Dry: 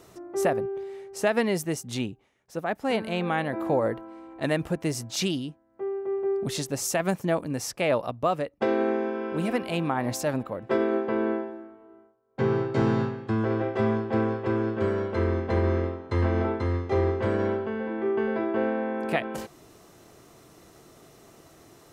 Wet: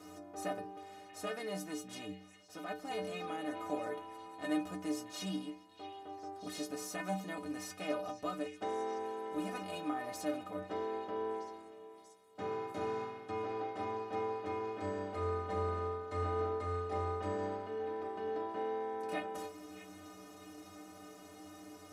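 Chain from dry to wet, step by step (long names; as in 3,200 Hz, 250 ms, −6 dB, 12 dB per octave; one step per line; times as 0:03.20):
compressor on every frequency bin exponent 0.6
low-shelf EQ 180 Hz −6 dB
stiff-string resonator 90 Hz, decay 0.62 s, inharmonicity 0.03
hollow resonant body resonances 290/700/1,300 Hz, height 9 dB, ringing for 45 ms
on a send: echo through a band-pass that steps 635 ms, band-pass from 2,700 Hz, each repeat 0.7 octaves, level −10 dB
on the sum: level −5 dB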